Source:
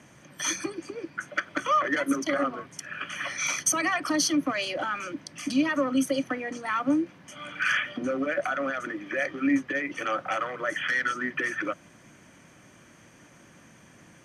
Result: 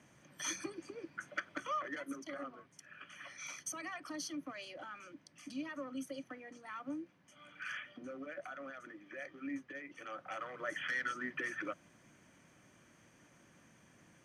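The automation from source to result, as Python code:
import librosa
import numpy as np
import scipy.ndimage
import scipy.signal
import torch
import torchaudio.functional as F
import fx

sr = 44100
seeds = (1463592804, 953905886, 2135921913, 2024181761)

y = fx.gain(x, sr, db=fx.line((1.37, -10.5), (2.13, -18.0), (10.07, -18.0), (10.66, -10.5)))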